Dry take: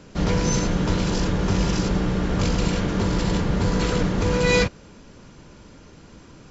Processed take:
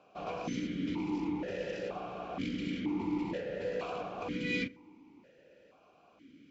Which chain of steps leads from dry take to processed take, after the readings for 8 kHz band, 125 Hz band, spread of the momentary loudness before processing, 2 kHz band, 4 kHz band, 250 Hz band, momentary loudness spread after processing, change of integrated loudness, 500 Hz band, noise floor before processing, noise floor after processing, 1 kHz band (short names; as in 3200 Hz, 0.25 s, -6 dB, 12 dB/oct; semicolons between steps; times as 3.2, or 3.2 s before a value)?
n/a, -22.5 dB, 3 LU, -12.5 dB, -16.0 dB, -11.5 dB, 5 LU, -14.0 dB, -12.5 dB, -47 dBFS, -64 dBFS, -12.0 dB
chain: analogue delay 73 ms, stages 1024, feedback 58%, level -22.5 dB; vowel sequencer 2.1 Hz